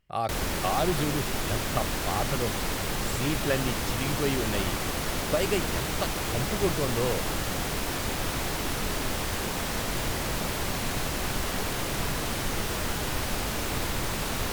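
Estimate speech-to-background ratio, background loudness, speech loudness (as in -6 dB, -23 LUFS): -2.0 dB, -29.5 LUFS, -31.5 LUFS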